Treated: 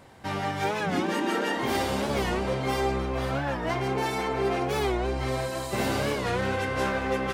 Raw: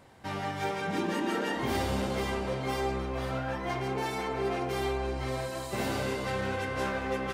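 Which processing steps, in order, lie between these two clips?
0:01.00–0:02.10: low-shelf EQ 120 Hz −11.5 dB
wow of a warped record 45 rpm, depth 160 cents
level +4.5 dB

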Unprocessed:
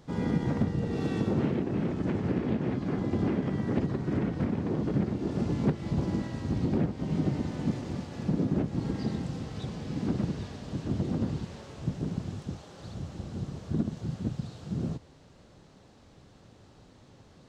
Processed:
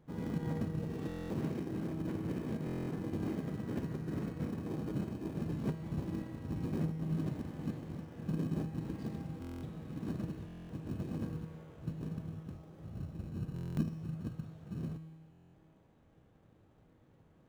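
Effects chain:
adaptive Wiener filter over 9 samples
0:12.55–0:13.87: tilt shelving filter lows +5.5 dB, about 670 Hz
in parallel at −11 dB: decimation without filtering 32×
on the sum: tuned comb filter 160 Hz, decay 1.6 s, mix 80%
buffer that repeats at 0:01.07/0:02.65/0:09.40/0:10.46/0:13.54/0:15.31, samples 1,024, times 9
level +2 dB

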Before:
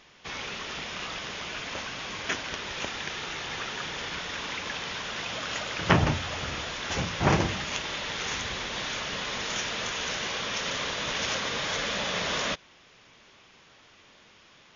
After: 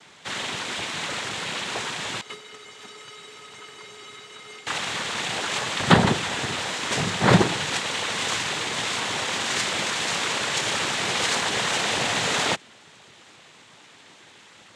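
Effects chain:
cochlear-implant simulation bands 6
0:02.21–0:04.67: tuned comb filter 420 Hz, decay 0.17 s, harmonics odd, mix 90%
level +6.5 dB

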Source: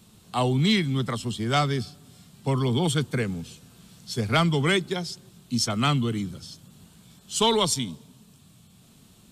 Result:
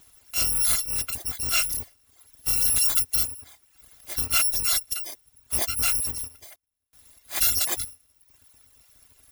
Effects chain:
samples in bit-reversed order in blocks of 256 samples
0:02.56–0:03.28: high-shelf EQ 4,700 Hz +4 dB
0:06.14–0:07.35: duck −22 dB, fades 0.42 s logarithmic
reverb reduction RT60 0.83 s

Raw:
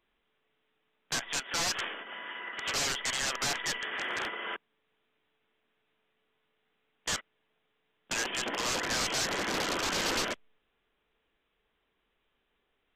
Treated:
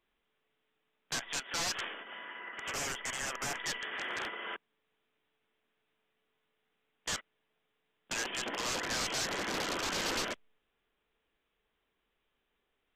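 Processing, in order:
0:02.25–0:03.60: parametric band 4,100 Hz −12.5 dB 0.55 octaves
level −3.5 dB

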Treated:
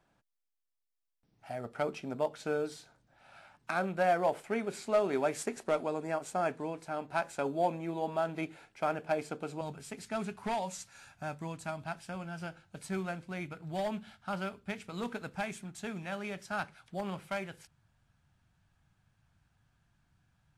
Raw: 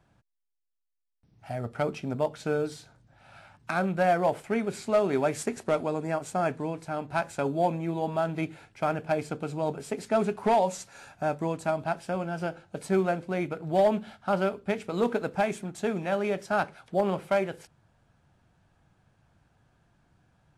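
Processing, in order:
parametric band 85 Hz −11.5 dB 2 octaves, from 0:09.61 460 Hz
level −3.5 dB

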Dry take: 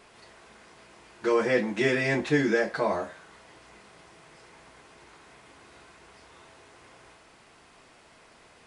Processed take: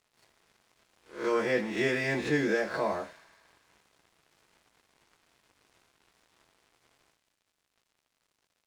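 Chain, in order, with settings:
peak hold with a rise ahead of every peak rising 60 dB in 0.46 s
dead-zone distortion −48.5 dBFS
delay with a high-pass on its return 79 ms, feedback 77%, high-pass 2,000 Hz, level −14.5 dB
level −4.5 dB

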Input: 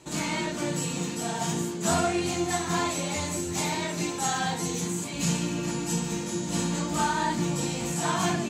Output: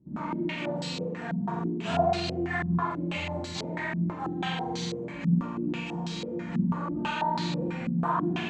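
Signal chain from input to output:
flutter between parallel walls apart 8 metres, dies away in 1 s
low-pass on a step sequencer 6.1 Hz 210–4,200 Hz
level −8 dB

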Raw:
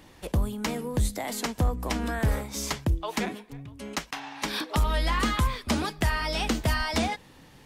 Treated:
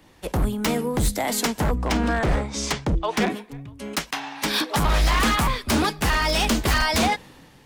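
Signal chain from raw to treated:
0:01.78–0:03.30: Bessel low-pass filter 5,900 Hz, order 8
wave folding −23 dBFS
multiband upward and downward expander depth 40%
level +8.5 dB

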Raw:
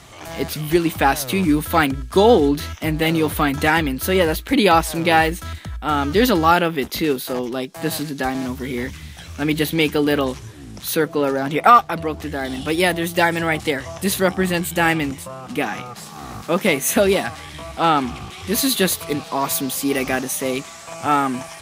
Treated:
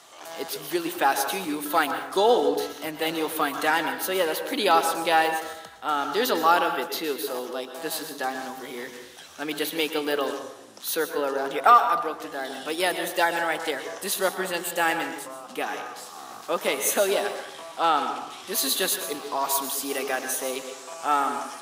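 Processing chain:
high-pass filter 480 Hz 12 dB per octave
parametric band 2,200 Hz −6.5 dB 0.48 octaves
dense smooth reverb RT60 0.79 s, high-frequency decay 0.55×, pre-delay 105 ms, DRR 7 dB
level −4 dB

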